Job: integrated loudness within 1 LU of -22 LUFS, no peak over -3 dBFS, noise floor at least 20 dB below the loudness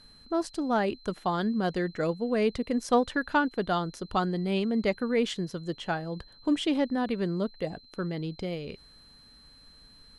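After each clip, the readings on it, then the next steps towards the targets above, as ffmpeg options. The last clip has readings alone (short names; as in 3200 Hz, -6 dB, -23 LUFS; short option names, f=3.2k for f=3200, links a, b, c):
steady tone 4100 Hz; tone level -54 dBFS; loudness -29.5 LUFS; peak -11.5 dBFS; loudness target -22.0 LUFS
-> -af "bandreject=f=4.1k:w=30"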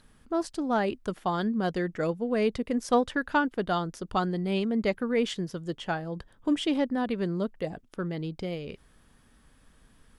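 steady tone none; loudness -29.5 LUFS; peak -11.5 dBFS; loudness target -22.0 LUFS
-> -af "volume=7.5dB"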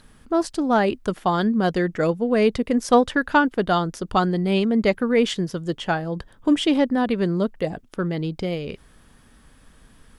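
loudness -22.0 LUFS; peak -4.0 dBFS; noise floor -53 dBFS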